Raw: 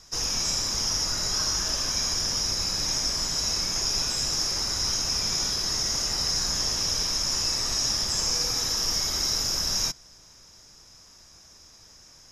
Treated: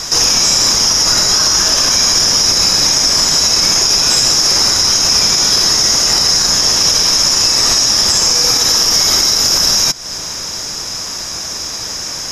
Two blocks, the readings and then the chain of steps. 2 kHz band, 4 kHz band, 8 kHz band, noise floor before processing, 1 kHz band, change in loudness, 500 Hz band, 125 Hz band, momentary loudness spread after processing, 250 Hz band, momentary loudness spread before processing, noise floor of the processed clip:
+16.0 dB, +15.5 dB, +15.5 dB, -52 dBFS, +16.0 dB, +15.5 dB, +15.5 dB, +10.0 dB, 11 LU, +14.0 dB, 1 LU, -24 dBFS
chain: bass shelf 110 Hz -11.5 dB; compression, threshold -37 dBFS, peak gain reduction 13.5 dB; loudness maximiser +30.5 dB; trim -1 dB

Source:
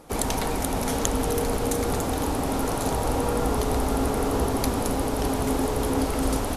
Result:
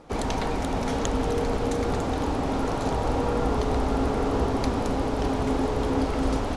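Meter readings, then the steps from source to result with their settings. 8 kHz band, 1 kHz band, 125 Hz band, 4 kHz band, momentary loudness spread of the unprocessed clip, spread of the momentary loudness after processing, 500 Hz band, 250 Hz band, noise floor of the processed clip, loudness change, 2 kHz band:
-10.5 dB, -0.5 dB, 0.0 dB, -3.0 dB, 1 LU, 2 LU, -0.5 dB, 0.0 dB, -28 dBFS, -1.0 dB, -1.0 dB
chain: distance through air 100 m

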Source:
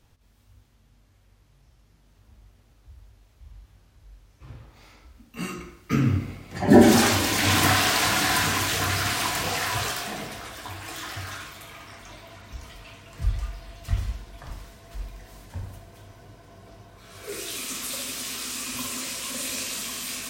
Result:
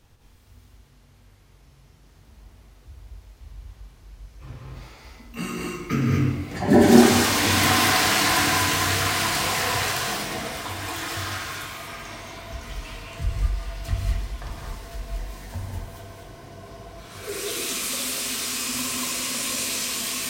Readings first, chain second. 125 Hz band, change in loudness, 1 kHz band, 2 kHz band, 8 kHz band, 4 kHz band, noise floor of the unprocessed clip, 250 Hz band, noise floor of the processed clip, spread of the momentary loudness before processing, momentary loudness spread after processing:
+1.5 dB, +1.5 dB, +2.5 dB, +2.5 dB, +3.0 dB, +2.5 dB, -60 dBFS, +2.0 dB, -54 dBFS, 23 LU, 20 LU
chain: in parallel at +2 dB: compression, threshold -34 dBFS, peak gain reduction 23 dB; on the sum: gated-style reverb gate 260 ms rising, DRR -1 dB; trim -3.5 dB

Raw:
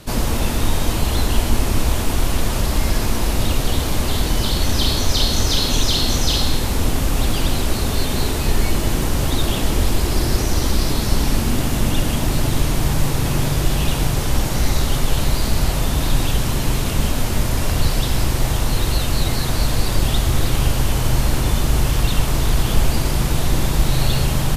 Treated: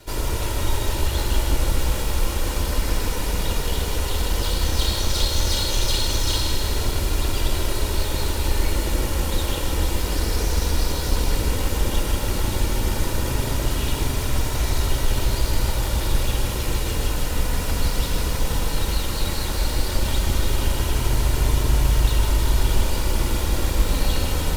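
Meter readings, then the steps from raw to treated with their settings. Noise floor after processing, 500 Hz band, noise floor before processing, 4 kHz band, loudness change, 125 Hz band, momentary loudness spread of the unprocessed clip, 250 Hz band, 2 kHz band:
-26 dBFS, -3.0 dB, -21 dBFS, -4.0 dB, -3.5 dB, -4.5 dB, 3 LU, -7.0 dB, -3.5 dB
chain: comb filter that takes the minimum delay 2.1 ms; flange 0.14 Hz, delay 2.9 ms, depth 1.3 ms, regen -55%; bit-crushed delay 157 ms, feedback 80%, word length 7-bit, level -8.5 dB

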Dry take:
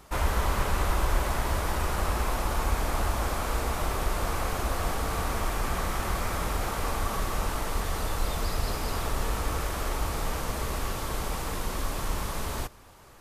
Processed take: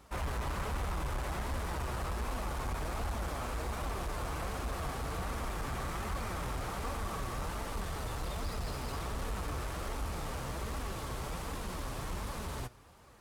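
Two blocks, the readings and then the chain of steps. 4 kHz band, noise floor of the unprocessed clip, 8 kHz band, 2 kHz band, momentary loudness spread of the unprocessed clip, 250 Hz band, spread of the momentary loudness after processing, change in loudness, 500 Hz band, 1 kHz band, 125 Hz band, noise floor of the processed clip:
-8.5 dB, -35 dBFS, -10.0 dB, -8.0 dB, 5 LU, -6.0 dB, 3 LU, -8.0 dB, -7.5 dB, -8.0 dB, -6.5 dB, -42 dBFS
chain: high-pass 53 Hz 12 dB/octave; bass shelf 120 Hz +7.5 dB; saturation -22.5 dBFS, distortion -14 dB; flange 1.3 Hz, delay 3.4 ms, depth 5 ms, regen +58%; decimation joined by straight lines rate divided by 2×; trim -2 dB

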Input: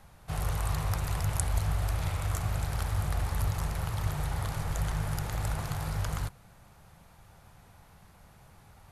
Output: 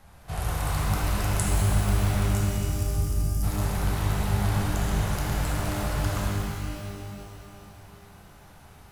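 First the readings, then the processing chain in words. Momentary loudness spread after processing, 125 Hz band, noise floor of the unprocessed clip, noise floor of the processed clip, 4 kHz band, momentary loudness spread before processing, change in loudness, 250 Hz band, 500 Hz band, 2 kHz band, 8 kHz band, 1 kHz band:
13 LU, +5.5 dB, -57 dBFS, -50 dBFS, +6.5 dB, 4 LU, +5.5 dB, +10.0 dB, +8.0 dB, +6.0 dB, +5.5 dB, +5.0 dB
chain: spectral selection erased 2.28–3.43 s, 310–4600 Hz; pitch-shifted reverb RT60 2.8 s, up +12 st, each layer -8 dB, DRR -4 dB

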